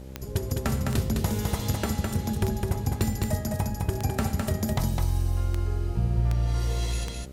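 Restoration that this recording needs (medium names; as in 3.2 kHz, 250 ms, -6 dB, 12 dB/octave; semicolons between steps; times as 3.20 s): de-click; de-hum 65.8 Hz, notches 9; expander -26 dBFS, range -21 dB; inverse comb 208 ms -3.5 dB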